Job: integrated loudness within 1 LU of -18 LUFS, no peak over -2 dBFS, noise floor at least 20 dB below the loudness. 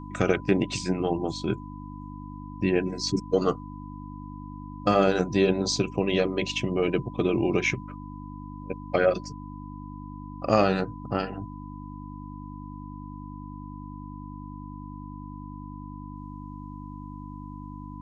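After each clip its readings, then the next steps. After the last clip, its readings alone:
hum 50 Hz; harmonics up to 300 Hz; hum level -38 dBFS; steady tone 1000 Hz; tone level -45 dBFS; loudness -26.0 LUFS; peak -8.0 dBFS; loudness target -18.0 LUFS
-> de-hum 50 Hz, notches 6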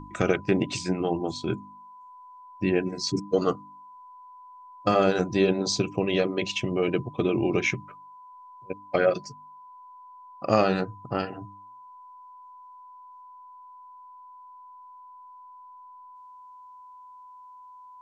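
hum none; steady tone 1000 Hz; tone level -45 dBFS
-> notch 1000 Hz, Q 30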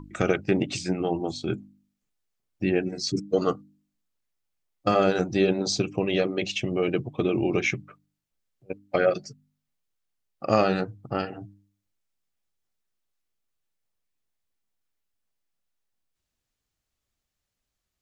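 steady tone none; loudness -26.5 LUFS; peak -8.5 dBFS; loudness target -18.0 LUFS
-> gain +8.5 dB; limiter -2 dBFS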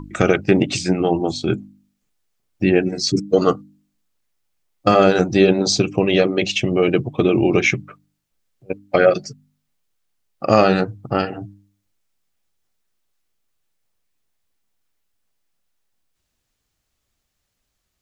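loudness -18.0 LUFS; peak -2.0 dBFS; noise floor -75 dBFS

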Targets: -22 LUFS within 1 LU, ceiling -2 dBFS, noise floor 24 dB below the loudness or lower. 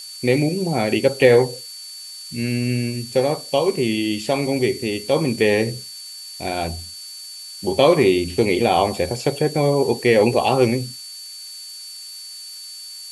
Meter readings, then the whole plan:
steady tone 4500 Hz; tone level -35 dBFS; noise floor -37 dBFS; noise floor target -44 dBFS; loudness -19.5 LUFS; peak -1.0 dBFS; loudness target -22.0 LUFS
-> notch 4500 Hz, Q 30; denoiser 7 dB, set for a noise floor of -37 dBFS; gain -2.5 dB

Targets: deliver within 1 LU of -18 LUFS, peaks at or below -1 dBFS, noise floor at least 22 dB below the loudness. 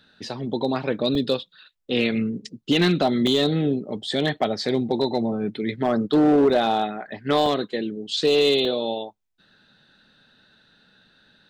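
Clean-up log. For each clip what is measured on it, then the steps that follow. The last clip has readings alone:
clipped 0.7%; flat tops at -12.0 dBFS; dropouts 5; longest dropout 1.7 ms; loudness -22.5 LUFS; peak -12.0 dBFS; loudness target -18.0 LUFS
-> clip repair -12 dBFS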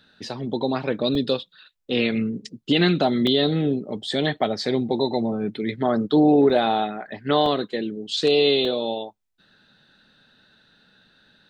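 clipped 0.0%; dropouts 5; longest dropout 1.7 ms
-> interpolate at 1.15/3.27/6.5/7.46/8.65, 1.7 ms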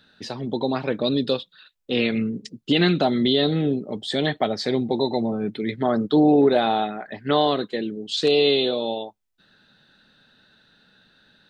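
dropouts 0; loudness -22.5 LUFS; peak -6.5 dBFS; loudness target -18.0 LUFS
-> gain +4.5 dB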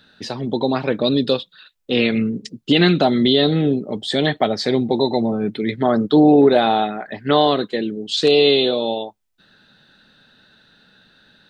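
loudness -18.0 LUFS; peak -2.0 dBFS; noise floor -60 dBFS

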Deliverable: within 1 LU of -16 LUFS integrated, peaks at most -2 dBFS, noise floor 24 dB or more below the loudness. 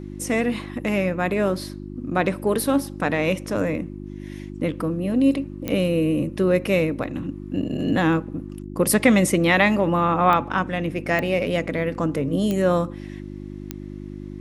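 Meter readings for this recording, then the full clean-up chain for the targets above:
clicks 5; hum 50 Hz; harmonics up to 350 Hz; hum level -33 dBFS; loudness -22.0 LUFS; peak -3.0 dBFS; loudness target -16.0 LUFS
-> de-click; de-hum 50 Hz, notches 7; gain +6 dB; limiter -2 dBFS

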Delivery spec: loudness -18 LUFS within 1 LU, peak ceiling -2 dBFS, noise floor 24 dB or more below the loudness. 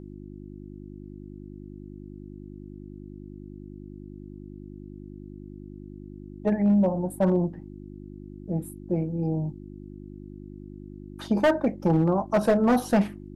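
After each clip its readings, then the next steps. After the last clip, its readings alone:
clipped 0.7%; flat tops at -15.0 dBFS; hum 50 Hz; harmonics up to 350 Hz; hum level -40 dBFS; loudness -25.0 LUFS; peak -15.0 dBFS; loudness target -18.0 LUFS
-> clip repair -15 dBFS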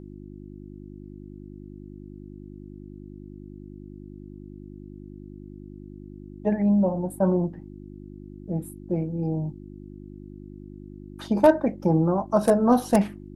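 clipped 0.0%; hum 50 Hz; harmonics up to 350 Hz; hum level -40 dBFS
-> de-hum 50 Hz, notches 7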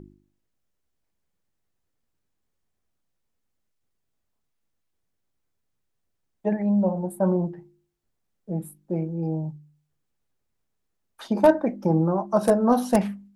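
hum none; loudness -24.0 LUFS; peak -5.5 dBFS; loudness target -18.0 LUFS
-> gain +6 dB; limiter -2 dBFS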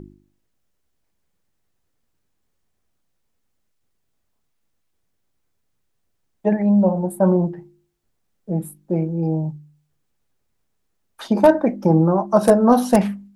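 loudness -18.5 LUFS; peak -2.0 dBFS; noise floor -71 dBFS

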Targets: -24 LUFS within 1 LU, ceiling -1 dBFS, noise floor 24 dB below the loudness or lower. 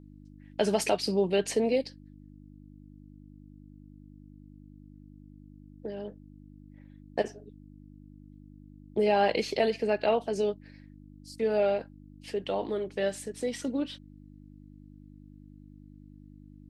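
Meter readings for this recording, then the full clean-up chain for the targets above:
hum 50 Hz; harmonics up to 300 Hz; hum level -49 dBFS; loudness -29.5 LUFS; peak -11.5 dBFS; loudness target -24.0 LUFS
-> de-hum 50 Hz, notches 6; gain +5.5 dB

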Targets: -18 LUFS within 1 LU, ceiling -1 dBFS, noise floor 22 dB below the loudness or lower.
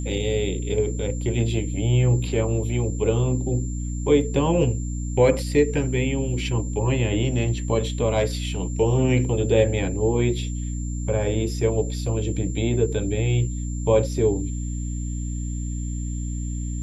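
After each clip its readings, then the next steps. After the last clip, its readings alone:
hum 60 Hz; harmonics up to 300 Hz; hum level -26 dBFS; steady tone 7300 Hz; tone level -40 dBFS; loudness -23.5 LUFS; peak -5.5 dBFS; loudness target -18.0 LUFS
-> de-hum 60 Hz, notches 5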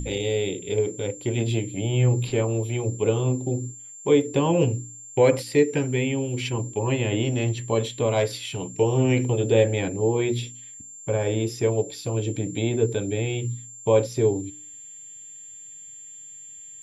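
hum none; steady tone 7300 Hz; tone level -40 dBFS
-> notch 7300 Hz, Q 30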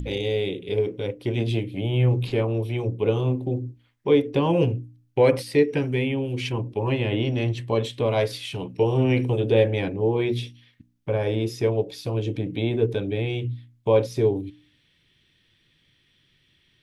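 steady tone none; loudness -24.5 LUFS; peak -6.5 dBFS; loudness target -18.0 LUFS
-> gain +6.5 dB; limiter -1 dBFS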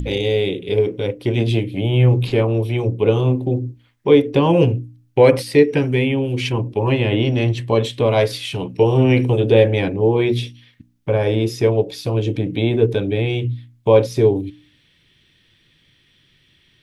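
loudness -18.0 LUFS; peak -1.0 dBFS; noise floor -58 dBFS

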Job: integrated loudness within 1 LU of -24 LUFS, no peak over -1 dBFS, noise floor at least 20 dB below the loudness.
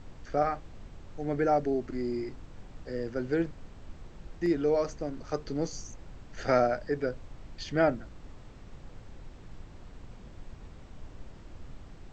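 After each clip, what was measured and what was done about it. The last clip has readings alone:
noise floor -50 dBFS; noise floor target -51 dBFS; loudness -31.0 LUFS; peak -12.5 dBFS; loudness target -24.0 LUFS
-> noise print and reduce 6 dB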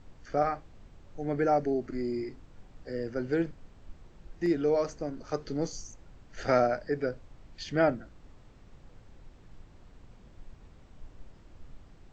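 noise floor -55 dBFS; loudness -31.0 LUFS; peak -12.5 dBFS; loudness target -24.0 LUFS
-> gain +7 dB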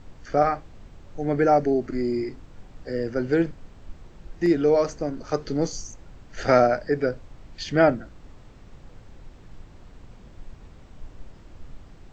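loudness -24.0 LUFS; peak -5.5 dBFS; noise floor -48 dBFS

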